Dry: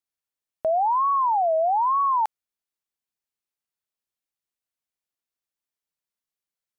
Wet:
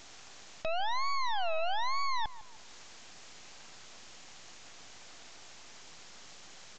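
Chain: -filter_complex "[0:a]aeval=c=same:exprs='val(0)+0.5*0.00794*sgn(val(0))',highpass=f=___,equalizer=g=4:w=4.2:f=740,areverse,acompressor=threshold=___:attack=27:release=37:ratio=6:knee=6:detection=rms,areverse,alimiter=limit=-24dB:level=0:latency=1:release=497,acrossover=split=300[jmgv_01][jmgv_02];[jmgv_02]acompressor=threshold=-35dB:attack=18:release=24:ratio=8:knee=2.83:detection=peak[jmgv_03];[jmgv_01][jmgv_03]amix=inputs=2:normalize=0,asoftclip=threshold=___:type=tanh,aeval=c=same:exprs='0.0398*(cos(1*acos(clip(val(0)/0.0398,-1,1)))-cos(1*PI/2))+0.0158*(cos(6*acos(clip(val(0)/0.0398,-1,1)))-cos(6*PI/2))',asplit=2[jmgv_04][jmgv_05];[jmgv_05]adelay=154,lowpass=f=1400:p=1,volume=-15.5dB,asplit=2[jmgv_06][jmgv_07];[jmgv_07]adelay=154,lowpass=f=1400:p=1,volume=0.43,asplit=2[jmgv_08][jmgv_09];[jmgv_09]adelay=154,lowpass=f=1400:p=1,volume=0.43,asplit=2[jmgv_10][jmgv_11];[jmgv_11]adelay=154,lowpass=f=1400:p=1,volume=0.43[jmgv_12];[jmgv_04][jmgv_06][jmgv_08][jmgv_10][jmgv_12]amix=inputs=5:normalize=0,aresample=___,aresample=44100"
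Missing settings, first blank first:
44, -31dB, -26.5dB, 16000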